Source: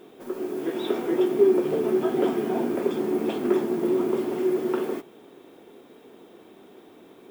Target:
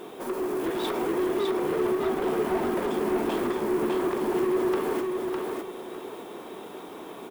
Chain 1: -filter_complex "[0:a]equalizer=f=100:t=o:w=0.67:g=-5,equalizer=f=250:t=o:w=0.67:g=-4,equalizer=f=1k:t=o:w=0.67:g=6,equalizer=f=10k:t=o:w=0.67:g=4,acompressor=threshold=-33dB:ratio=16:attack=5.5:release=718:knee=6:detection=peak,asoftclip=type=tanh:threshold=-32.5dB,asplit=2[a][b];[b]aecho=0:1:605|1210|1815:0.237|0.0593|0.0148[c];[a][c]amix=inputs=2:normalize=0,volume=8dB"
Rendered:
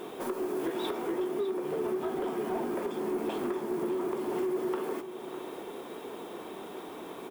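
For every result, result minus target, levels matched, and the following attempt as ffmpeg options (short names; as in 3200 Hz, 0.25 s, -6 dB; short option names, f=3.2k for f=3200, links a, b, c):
compressor: peak gain reduction +8 dB; echo-to-direct -9.5 dB
-filter_complex "[0:a]equalizer=f=100:t=o:w=0.67:g=-5,equalizer=f=250:t=o:w=0.67:g=-4,equalizer=f=1k:t=o:w=0.67:g=6,equalizer=f=10k:t=o:w=0.67:g=4,acompressor=threshold=-24.5dB:ratio=16:attack=5.5:release=718:knee=6:detection=peak,asoftclip=type=tanh:threshold=-32.5dB,asplit=2[a][b];[b]aecho=0:1:605|1210|1815:0.237|0.0593|0.0148[c];[a][c]amix=inputs=2:normalize=0,volume=8dB"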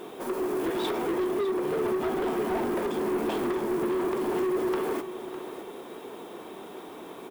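echo-to-direct -9.5 dB
-filter_complex "[0:a]equalizer=f=100:t=o:w=0.67:g=-5,equalizer=f=250:t=o:w=0.67:g=-4,equalizer=f=1k:t=o:w=0.67:g=6,equalizer=f=10k:t=o:w=0.67:g=4,acompressor=threshold=-24.5dB:ratio=16:attack=5.5:release=718:knee=6:detection=peak,asoftclip=type=tanh:threshold=-32.5dB,asplit=2[a][b];[b]aecho=0:1:605|1210|1815|2420:0.708|0.177|0.0442|0.0111[c];[a][c]amix=inputs=2:normalize=0,volume=8dB"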